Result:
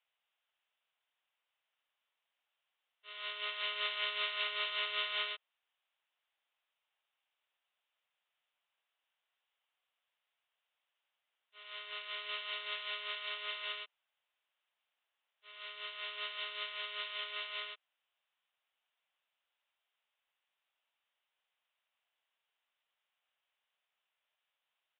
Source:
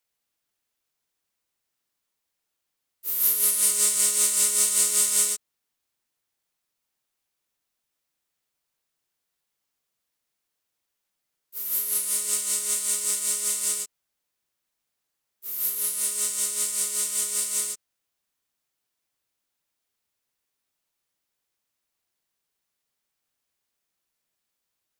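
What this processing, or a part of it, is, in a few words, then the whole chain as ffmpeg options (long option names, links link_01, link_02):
musical greeting card: -af "aresample=8000,aresample=44100,highpass=frequency=580:width=0.5412,highpass=frequency=580:width=1.3066,equalizer=frequency=2900:width_type=o:width=0.4:gain=4.5"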